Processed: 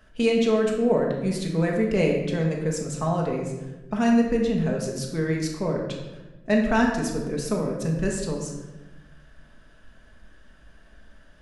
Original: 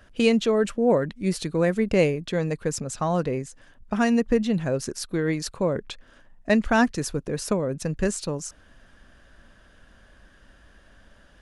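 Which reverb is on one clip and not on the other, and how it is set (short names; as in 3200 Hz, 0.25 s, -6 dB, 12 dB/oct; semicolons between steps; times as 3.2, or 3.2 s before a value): shoebox room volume 620 m³, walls mixed, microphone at 1.5 m; gain -4.5 dB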